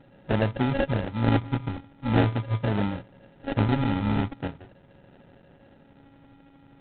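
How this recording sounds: a buzz of ramps at a fixed pitch in blocks of 32 samples; phasing stages 4, 0.43 Hz, lowest notch 510–1500 Hz; aliases and images of a low sample rate 1100 Hz, jitter 0%; IMA ADPCM

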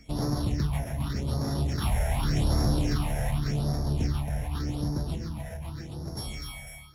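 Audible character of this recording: a buzz of ramps at a fixed pitch in blocks of 8 samples; phasing stages 6, 0.86 Hz, lowest notch 300–2800 Hz; Vorbis

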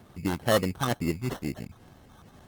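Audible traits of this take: phasing stages 6, 2.2 Hz, lowest notch 500–3800 Hz; aliases and images of a low sample rate 2400 Hz, jitter 0%; Opus

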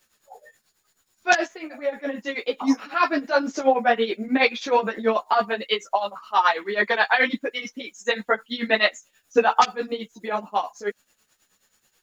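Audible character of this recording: a quantiser's noise floor 12-bit, dither none; tremolo triangle 9.3 Hz, depth 85%; a shimmering, thickened sound

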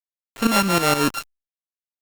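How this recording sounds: a buzz of ramps at a fixed pitch in blocks of 32 samples; tremolo saw up 6.4 Hz, depth 75%; a quantiser's noise floor 6-bit, dither none; Opus

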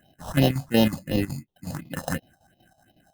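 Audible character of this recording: aliases and images of a low sample rate 2300 Hz, jitter 0%; phasing stages 4, 2.8 Hz, lowest notch 330–1500 Hz; chopped level 5.4 Hz, depth 65%, duty 75%

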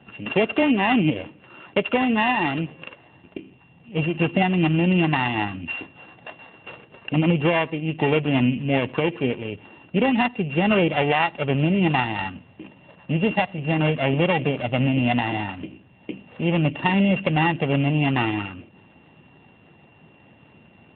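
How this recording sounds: a buzz of ramps at a fixed pitch in blocks of 16 samples; AMR-NB

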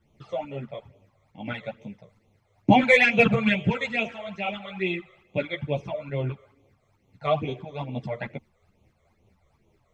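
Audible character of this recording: phasing stages 12, 2.3 Hz, lowest notch 260–1700 Hz; tremolo saw up 4.6 Hz, depth 45%; a shimmering, thickened sound

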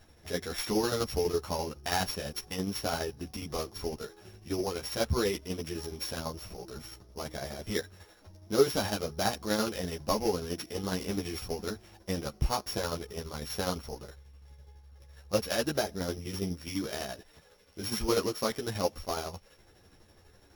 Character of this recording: a buzz of ramps at a fixed pitch in blocks of 8 samples; tremolo saw down 12 Hz, depth 60%; a shimmering, thickened sound

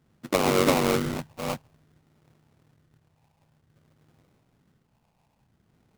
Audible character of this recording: phasing stages 4, 0.53 Hz, lowest notch 360–2800 Hz; aliases and images of a low sample rate 1700 Hz, jitter 20%

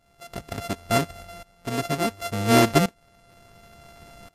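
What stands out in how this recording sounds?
a buzz of ramps at a fixed pitch in blocks of 64 samples; tremolo saw up 0.7 Hz, depth 90%; MP3

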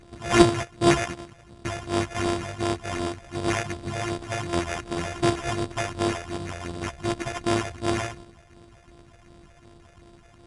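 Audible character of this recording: a buzz of ramps at a fixed pitch in blocks of 128 samples; phasing stages 6, 2.7 Hz, lowest notch 260–3300 Hz; aliases and images of a low sample rate 4200 Hz, jitter 0%; Vorbis

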